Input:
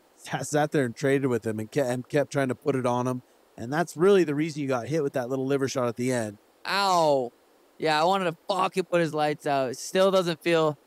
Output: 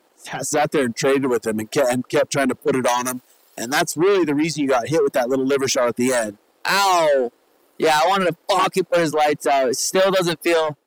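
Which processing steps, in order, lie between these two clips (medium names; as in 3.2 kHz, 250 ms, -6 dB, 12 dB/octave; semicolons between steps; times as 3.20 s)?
saturation -26 dBFS, distortion -7 dB; high-pass 190 Hz 12 dB/octave; waveshaping leveller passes 1; level rider gain up to 12 dB; reverb removal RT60 1.4 s; 2.88–3.81 s: tilt EQ +3 dB/octave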